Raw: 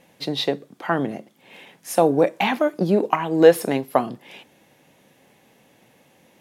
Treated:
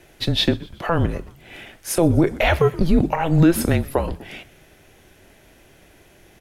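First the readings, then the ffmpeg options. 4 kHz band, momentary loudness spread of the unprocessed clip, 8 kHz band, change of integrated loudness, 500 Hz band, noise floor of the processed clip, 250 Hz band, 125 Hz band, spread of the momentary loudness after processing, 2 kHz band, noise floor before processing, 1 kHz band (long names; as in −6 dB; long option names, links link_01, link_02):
+4.5 dB, 16 LU, +5.0 dB, +1.0 dB, −3.5 dB, −52 dBFS, +3.5 dB, +11.0 dB, 18 LU, +2.0 dB, −58 dBFS, −2.0 dB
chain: -filter_complex "[0:a]asplit=4[link_01][link_02][link_03][link_04];[link_02]adelay=124,afreqshift=-89,volume=-22.5dB[link_05];[link_03]adelay=248,afreqshift=-178,volume=-28.3dB[link_06];[link_04]adelay=372,afreqshift=-267,volume=-34.2dB[link_07];[link_01][link_05][link_06][link_07]amix=inputs=4:normalize=0,alimiter=limit=-11.5dB:level=0:latency=1:release=99,afreqshift=-170,volume=5.5dB"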